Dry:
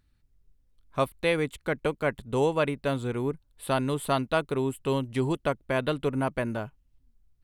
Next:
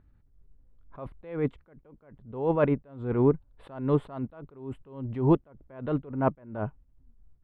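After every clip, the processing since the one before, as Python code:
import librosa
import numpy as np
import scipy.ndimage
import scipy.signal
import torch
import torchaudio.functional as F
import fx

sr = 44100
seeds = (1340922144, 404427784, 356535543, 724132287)

y = scipy.signal.sosfilt(scipy.signal.butter(2, 1200.0, 'lowpass', fs=sr, output='sos'), x)
y = fx.attack_slew(y, sr, db_per_s=110.0)
y = y * 10.0 ** (8.0 / 20.0)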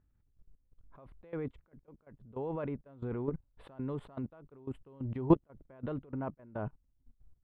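y = fx.level_steps(x, sr, step_db=18)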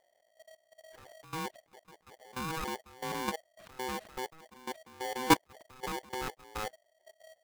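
y = x * np.sign(np.sin(2.0 * np.pi * 640.0 * np.arange(len(x)) / sr))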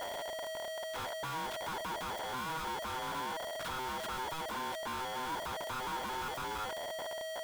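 y = np.sign(x) * np.sqrt(np.mean(np.square(x)))
y = fx.small_body(y, sr, hz=(970.0, 1400.0, 3300.0), ring_ms=20, db=11)
y = y * 10.0 ** (-3.5 / 20.0)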